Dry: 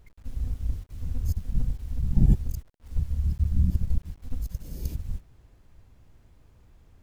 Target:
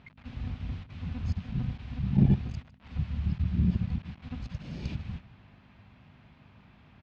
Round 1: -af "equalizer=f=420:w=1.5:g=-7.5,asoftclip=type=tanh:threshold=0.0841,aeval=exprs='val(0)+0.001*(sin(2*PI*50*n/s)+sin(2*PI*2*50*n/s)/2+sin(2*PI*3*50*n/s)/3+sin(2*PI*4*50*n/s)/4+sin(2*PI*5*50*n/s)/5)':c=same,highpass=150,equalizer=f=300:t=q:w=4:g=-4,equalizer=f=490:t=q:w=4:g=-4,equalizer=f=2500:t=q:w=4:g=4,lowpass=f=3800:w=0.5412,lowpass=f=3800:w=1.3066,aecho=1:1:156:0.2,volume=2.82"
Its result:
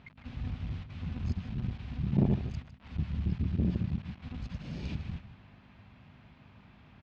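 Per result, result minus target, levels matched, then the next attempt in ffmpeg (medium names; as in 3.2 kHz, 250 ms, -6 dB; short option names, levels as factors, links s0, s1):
saturation: distortion +9 dB; echo-to-direct +6.5 dB
-af "equalizer=f=420:w=1.5:g=-7.5,asoftclip=type=tanh:threshold=0.237,aeval=exprs='val(0)+0.001*(sin(2*PI*50*n/s)+sin(2*PI*2*50*n/s)/2+sin(2*PI*3*50*n/s)/3+sin(2*PI*4*50*n/s)/4+sin(2*PI*5*50*n/s)/5)':c=same,highpass=150,equalizer=f=300:t=q:w=4:g=-4,equalizer=f=490:t=q:w=4:g=-4,equalizer=f=2500:t=q:w=4:g=4,lowpass=f=3800:w=0.5412,lowpass=f=3800:w=1.3066,aecho=1:1:156:0.2,volume=2.82"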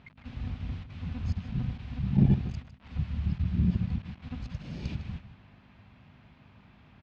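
echo-to-direct +6.5 dB
-af "equalizer=f=420:w=1.5:g=-7.5,asoftclip=type=tanh:threshold=0.237,aeval=exprs='val(0)+0.001*(sin(2*PI*50*n/s)+sin(2*PI*2*50*n/s)/2+sin(2*PI*3*50*n/s)/3+sin(2*PI*4*50*n/s)/4+sin(2*PI*5*50*n/s)/5)':c=same,highpass=150,equalizer=f=300:t=q:w=4:g=-4,equalizer=f=490:t=q:w=4:g=-4,equalizer=f=2500:t=q:w=4:g=4,lowpass=f=3800:w=0.5412,lowpass=f=3800:w=1.3066,aecho=1:1:156:0.0944,volume=2.82"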